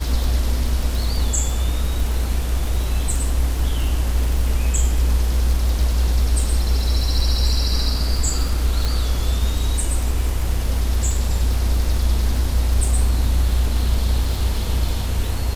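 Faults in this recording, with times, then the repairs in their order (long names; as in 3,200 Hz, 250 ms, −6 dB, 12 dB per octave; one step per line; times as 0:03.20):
surface crackle 51 per second −23 dBFS
0:08.85: click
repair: click removal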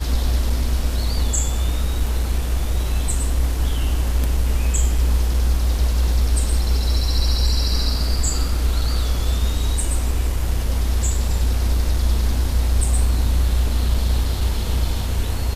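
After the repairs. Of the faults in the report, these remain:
none of them is left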